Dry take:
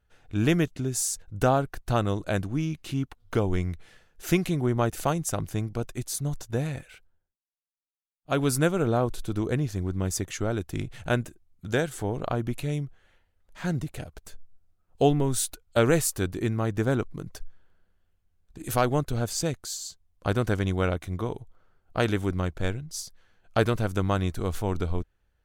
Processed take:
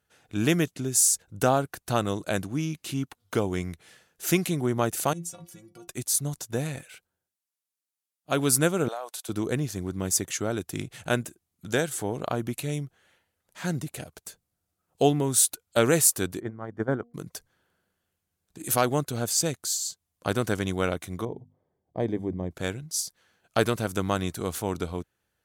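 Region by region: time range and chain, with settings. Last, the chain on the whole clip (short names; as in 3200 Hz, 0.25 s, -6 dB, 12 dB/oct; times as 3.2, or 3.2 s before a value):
5.13–5.88 dynamic EQ 4500 Hz, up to +6 dB, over -47 dBFS, Q 0.77 + compressor, threshold -28 dBFS + metallic resonator 170 Hz, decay 0.22 s, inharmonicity 0.008
8.88–9.29 Chebyshev high-pass 640 Hz, order 3 + compressor, threshold -30 dBFS
16.4–17.14 de-hum 237.3 Hz, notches 3 + gate -25 dBFS, range -12 dB + polynomial smoothing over 41 samples
21.25–22.51 running mean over 32 samples + notches 50/100/150/200/250 Hz
whole clip: HPF 130 Hz 12 dB/oct; bell 11000 Hz +9 dB 1.9 oct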